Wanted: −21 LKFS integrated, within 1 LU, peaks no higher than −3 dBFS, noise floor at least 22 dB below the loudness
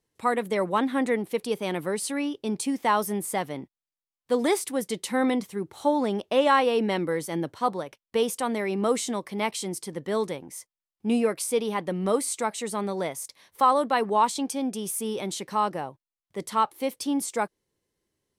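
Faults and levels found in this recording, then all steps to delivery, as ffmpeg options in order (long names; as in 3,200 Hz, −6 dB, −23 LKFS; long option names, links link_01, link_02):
integrated loudness −27.0 LKFS; sample peak −9.5 dBFS; target loudness −21.0 LKFS
→ -af "volume=6dB"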